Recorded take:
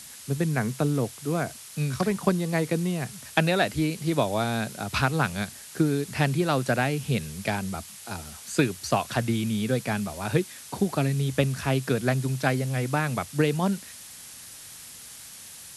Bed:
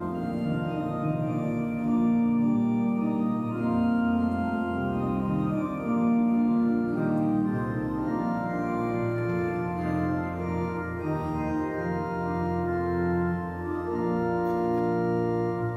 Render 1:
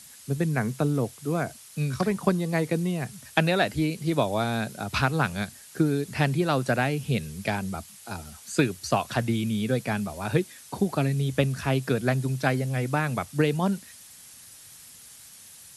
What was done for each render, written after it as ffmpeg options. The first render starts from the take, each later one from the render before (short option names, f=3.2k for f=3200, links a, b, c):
-af "afftdn=nr=6:nf=-44"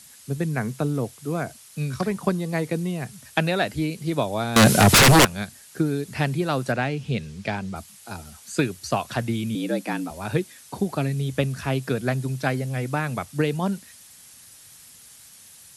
-filter_complex "[0:a]asettb=1/sr,asplit=3[a][b][c];[a]atrim=end=4.564[d];[b]atrim=start=4.56:end=5.25,asetpts=PTS-STARTPTS,afade=t=in:d=0.004:c=qsin,afade=t=out:st=0.686:d=0.004:c=qsin,aeval=exprs='0.335*sin(PI/2*8.91*val(0)/0.335)':c=same[e];[c]atrim=start=5.246[f];[d][e]acrossfade=d=0.004:c1=hsin:c2=qsin[g];[g][f]acrossfade=d=0.004:c1=qsin:c2=hsin,asettb=1/sr,asplit=3[h][i][j];[h]atrim=end=6.724[k];[i]atrim=start=6.72:end=7.76,asetpts=PTS-STARTPTS,afade=t=in:d=0.004:c=qsin,afade=t=out:st=1.036:d=0.004:c=qsin,lowpass=6k[l];[j]atrim=start=7.756[m];[k][l]acrossfade=d=0.004:c1=hsin:c2=qsin[n];[n][m]acrossfade=d=0.004:c1=qsin:c2=hsin,asettb=1/sr,asplit=3[o][p][q];[o]atrim=end=9.554[r];[p]atrim=start=9.55:end=10.11,asetpts=PTS-STARTPTS,afade=t=in:d=0.004:c=qsin,afade=t=out:st=0.556:d=0.004:c=qsin,afreqshift=73[s];[q]atrim=start=10.106[t];[r][s]acrossfade=d=0.004:c1=hsin:c2=qsin[u];[u][t]acrossfade=d=0.004:c1=qsin:c2=hsin"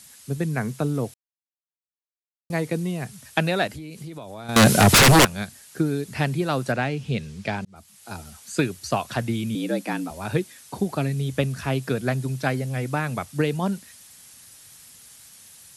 -filter_complex "[0:a]asettb=1/sr,asplit=3[a][b][c];[a]atrim=end=3.674[d];[b]atrim=start=3.67:end=4.49,asetpts=PTS-STARTPTS,afade=t=in:d=0.004:c=qsin,afade=t=out:st=0.816:d=0.004:c=qsin,acompressor=threshold=-33dB:ratio=10:attack=3.2:release=140:knee=1:detection=peak[e];[c]atrim=start=4.486[f];[d][e]acrossfade=d=0.004:c1=hsin:c2=qsin[g];[g][f]acrossfade=d=0.004:c1=qsin:c2=hsin,asplit=4[h][i][j][k];[h]atrim=end=1.14,asetpts=PTS-STARTPTS,afade=t=out:st=1.136:d=0.004:c=hsin[l];[i]atrim=start=1.14:end=2.5,asetpts=PTS-STARTPTS,volume=0[m];[j]atrim=start=2.5:end=7.65,asetpts=PTS-STARTPTS,afade=t=in:d=0.004:c=hsin,afade=t=out:st=5.146:d=0.004:c=hsin[n];[k]atrim=start=7.65,asetpts=PTS-STARTPTS,afade=t=in:d=0.49[o];[l][m][n][o]concat=n=4:v=0:a=1"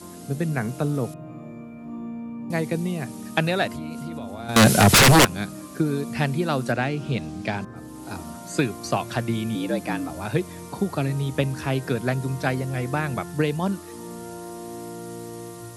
-filter_complex "[1:a]volume=-10.5dB[a];[0:a][a]amix=inputs=2:normalize=0"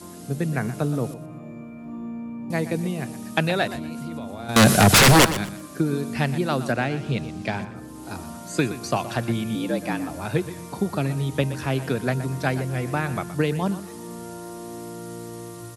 -af "aecho=1:1:121|242|363:0.211|0.0528|0.0132"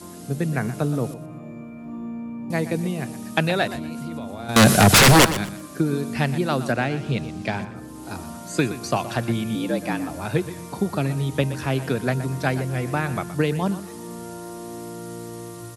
-af "volume=1dB"